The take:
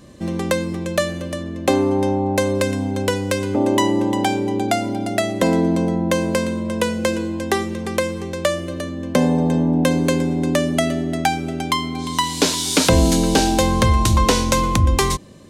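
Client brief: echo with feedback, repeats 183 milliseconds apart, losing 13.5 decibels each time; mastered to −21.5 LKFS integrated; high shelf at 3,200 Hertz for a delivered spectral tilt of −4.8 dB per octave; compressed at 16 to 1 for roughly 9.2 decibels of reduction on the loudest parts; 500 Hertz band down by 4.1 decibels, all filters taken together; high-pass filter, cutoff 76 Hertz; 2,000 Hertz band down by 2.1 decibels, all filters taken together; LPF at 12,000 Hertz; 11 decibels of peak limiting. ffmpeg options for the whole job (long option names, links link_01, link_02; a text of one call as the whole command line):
ffmpeg -i in.wav -af "highpass=76,lowpass=12000,equalizer=frequency=500:width_type=o:gain=-5,equalizer=frequency=2000:width_type=o:gain=-4,highshelf=frequency=3200:gain=5,acompressor=threshold=-22dB:ratio=16,alimiter=limit=-17dB:level=0:latency=1,aecho=1:1:183|366:0.211|0.0444,volume=5.5dB" out.wav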